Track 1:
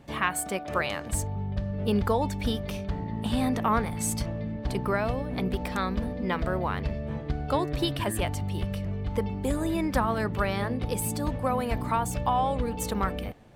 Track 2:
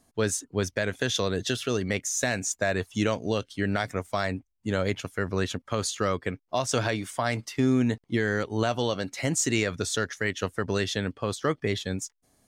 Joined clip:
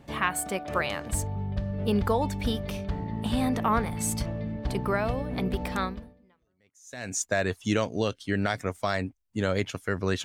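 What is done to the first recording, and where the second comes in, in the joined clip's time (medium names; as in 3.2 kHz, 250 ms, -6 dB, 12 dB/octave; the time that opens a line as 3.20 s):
track 1
6.49 s: go over to track 2 from 1.79 s, crossfade 1.30 s exponential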